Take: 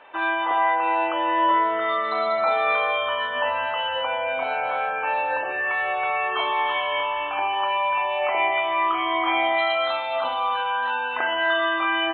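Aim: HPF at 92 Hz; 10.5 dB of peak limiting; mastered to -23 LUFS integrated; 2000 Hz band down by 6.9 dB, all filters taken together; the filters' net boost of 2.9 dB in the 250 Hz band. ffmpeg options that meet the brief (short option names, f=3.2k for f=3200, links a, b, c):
-af "highpass=92,equalizer=f=250:t=o:g=5,equalizer=f=2k:t=o:g=-9,volume=6.5dB,alimiter=limit=-15.5dB:level=0:latency=1"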